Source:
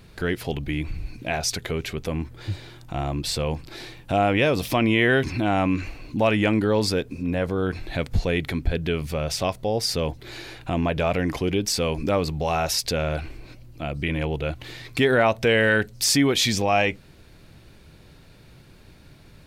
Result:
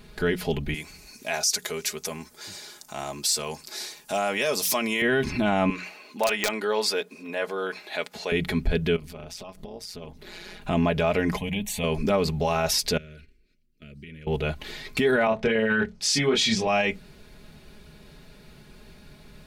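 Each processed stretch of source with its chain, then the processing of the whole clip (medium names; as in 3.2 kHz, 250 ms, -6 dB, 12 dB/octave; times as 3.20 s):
0.74–5.02 s: high-pass 770 Hz 6 dB/octave + resonant high shelf 4.4 kHz +10 dB, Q 1.5
5.70–8.32 s: high-pass 550 Hz + integer overflow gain 11 dB
8.96–10.62 s: compression 5:1, threshold -35 dBFS + AM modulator 180 Hz, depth 65%
11.37–11.84 s: peaking EQ 1.2 kHz -4.5 dB 0.36 oct + static phaser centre 1.4 kHz, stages 6
12.97–14.27 s: gate -32 dBFS, range -25 dB + compression 5:1, threshold -42 dBFS + Butterworth band-stop 860 Hz, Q 0.81
15.27–16.67 s: distance through air 75 m + doubling 27 ms -2.5 dB + three bands expanded up and down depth 70%
whole clip: hum notches 60/120/180 Hz; comb 4.8 ms, depth 65%; peak limiter -13.5 dBFS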